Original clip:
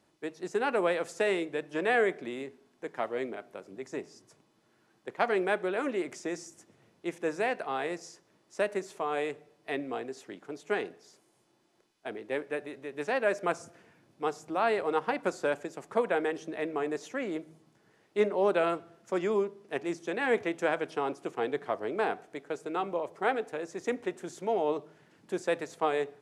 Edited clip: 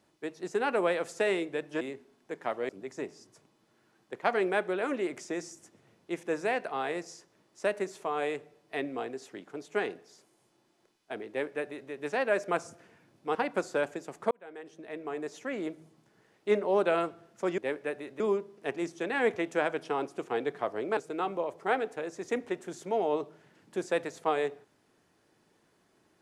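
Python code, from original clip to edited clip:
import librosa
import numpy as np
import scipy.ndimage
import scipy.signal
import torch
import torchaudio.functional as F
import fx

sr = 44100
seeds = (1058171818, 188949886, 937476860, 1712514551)

y = fx.edit(x, sr, fx.cut(start_s=1.81, length_s=0.53),
    fx.cut(start_s=3.22, length_s=0.42),
    fx.duplicate(start_s=12.24, length_s=0.62, to_s=19.27),
    fx.cut(start_s=14.3, length_s=0.74),
    fx.fade_in_span(start_s=16.0, length_s=1.38),
    fx.cut(start_s=22.04, length_s=0.49), tone=tone)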